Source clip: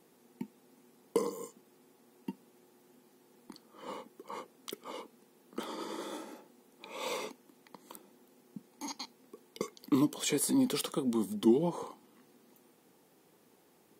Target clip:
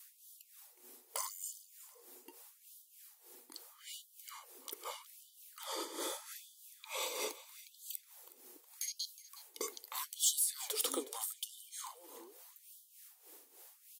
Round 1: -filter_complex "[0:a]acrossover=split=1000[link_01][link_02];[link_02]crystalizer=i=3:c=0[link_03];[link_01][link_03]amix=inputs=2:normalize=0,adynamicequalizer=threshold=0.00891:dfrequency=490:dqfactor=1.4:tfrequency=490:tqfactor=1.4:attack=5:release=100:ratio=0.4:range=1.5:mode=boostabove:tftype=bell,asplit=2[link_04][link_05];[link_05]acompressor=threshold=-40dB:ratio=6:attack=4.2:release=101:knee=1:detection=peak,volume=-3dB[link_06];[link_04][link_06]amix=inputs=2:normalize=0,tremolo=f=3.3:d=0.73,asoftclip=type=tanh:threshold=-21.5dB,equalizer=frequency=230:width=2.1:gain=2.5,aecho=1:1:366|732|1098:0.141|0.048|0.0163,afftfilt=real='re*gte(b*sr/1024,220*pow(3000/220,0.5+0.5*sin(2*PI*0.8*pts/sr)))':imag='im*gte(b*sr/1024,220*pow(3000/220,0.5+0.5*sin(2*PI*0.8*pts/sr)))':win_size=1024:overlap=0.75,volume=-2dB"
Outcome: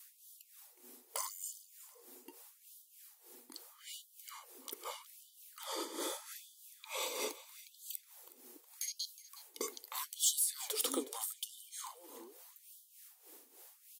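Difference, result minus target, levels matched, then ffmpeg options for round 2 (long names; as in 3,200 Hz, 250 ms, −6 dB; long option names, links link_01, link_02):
250 Hz band +3.0 dB
-filter_complex "[0:a]acrossover=split=1000[link_01][link_02];[link_02]crystalizer=i=3:c=0[link_03];[link_01][link_03]amix=inputs=2:normalize=0,adynamicequalizer=threshold=0.00891:dfrequency=490:dqfactor=1.4:tfrequency=490:tqfactor=1.4:attack=5:release=100:ratio=0.4:range=1.5:mode=boostabove:tftype=bell,asplit=2[link_04][link_05];[link_05]acompressor=threshold=-40dB:ratio=6:attack=4.2:release=101:knee=1:detection=peak,volume=-3dB[link_06];[link_04][link_06]amix=inputs=2:normalize=0,tremolo=f=3.3:d=0.73,asoftclip=type=tanh:threshold=-21.5dB,equalizer=frequency=230:width=2.1:gain=-5.5,aecho=1:1:366|732|1098:0.141|0.048|0.0163,afftfilt=real='re*gte(b*sr/1024,220*pow(3000/220,0.5+0.5*sin(2*PI*0.8*pts/sr)))':imag='im*gte(b*sr/1024,220*pow(3000/220,0.5+0.5*sin(2*PI*0.8*pts/sr)))':win_size=1024:overlap=0.75,volume=-2dB"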